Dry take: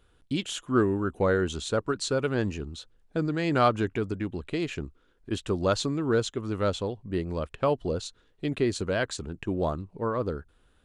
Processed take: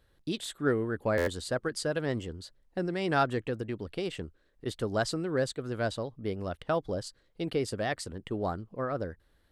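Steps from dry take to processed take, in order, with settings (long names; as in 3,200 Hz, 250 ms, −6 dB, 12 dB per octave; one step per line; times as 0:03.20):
speed change +14%
buffer that repeats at 0:01.17, samples 512, times 8
level −4 dB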